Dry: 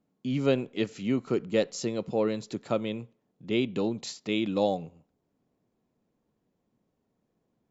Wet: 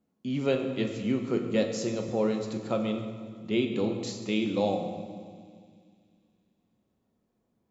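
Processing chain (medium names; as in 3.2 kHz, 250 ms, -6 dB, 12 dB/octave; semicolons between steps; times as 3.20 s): feedback echo behind a high-pass 94 ms, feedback 83%, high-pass 3.1 kHz, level -20.5 dB; on a send at -3 dB: reverberation RT60 1.9 s, pre-delay 7 ms; on the sum: trim -2 dB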